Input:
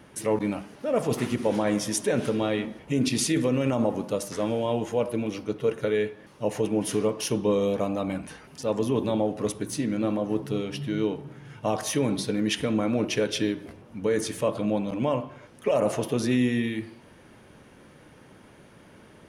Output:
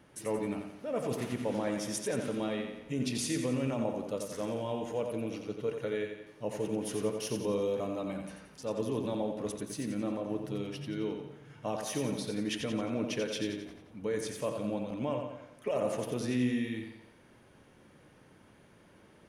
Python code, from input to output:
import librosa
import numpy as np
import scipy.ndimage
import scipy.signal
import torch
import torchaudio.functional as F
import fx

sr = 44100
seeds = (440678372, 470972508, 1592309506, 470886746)

y = fx.echo_feedback(x, sr, ms=88, feedback_pct=49, wet_db=-6.0)
y = y * 10.0 ** (-9.0 / 20.0)